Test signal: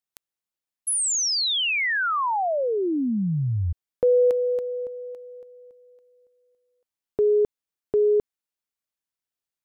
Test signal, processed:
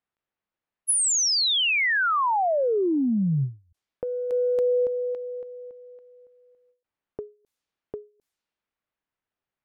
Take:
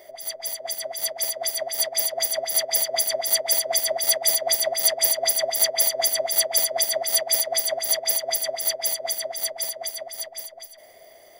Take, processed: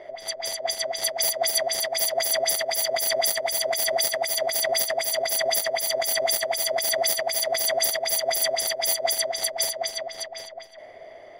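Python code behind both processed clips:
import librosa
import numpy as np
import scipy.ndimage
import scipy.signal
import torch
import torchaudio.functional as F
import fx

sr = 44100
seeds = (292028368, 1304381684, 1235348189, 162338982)

y = fx.env_lowpass(x, sr, base_hz=2100.0, full_db=-22.0)
y = fx.over_compress(y, sr, threshold_db=-27.0, ratio=-1.0)
y = fx.end_taper(y, sr, db_per_s=200.0)
y = F.gain(torch.from_numpy(y), 3.5).numpy()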